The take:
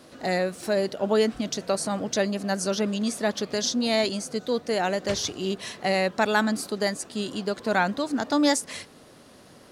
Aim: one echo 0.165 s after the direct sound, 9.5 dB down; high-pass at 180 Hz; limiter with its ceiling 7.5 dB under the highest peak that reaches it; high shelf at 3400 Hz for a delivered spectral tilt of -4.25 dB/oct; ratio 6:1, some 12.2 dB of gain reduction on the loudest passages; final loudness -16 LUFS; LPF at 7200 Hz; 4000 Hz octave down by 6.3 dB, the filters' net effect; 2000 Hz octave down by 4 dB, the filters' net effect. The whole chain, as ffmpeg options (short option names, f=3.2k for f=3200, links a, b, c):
-af "highpass=180,lowpass=7.2k,equalizer=f=2k:t=o:g=-3.5,highshelf=f=3.4k:g=-4,equalizer=f=4k:t=o:g=-3.5,acompressor=threshold=-32dB:ratio=6,alimiter=level_in=3.5dB:limit=-24dB:level=0:latency=1,volume=-3.5dB,aecho=1:1:165:0.335,volume=21.5dB"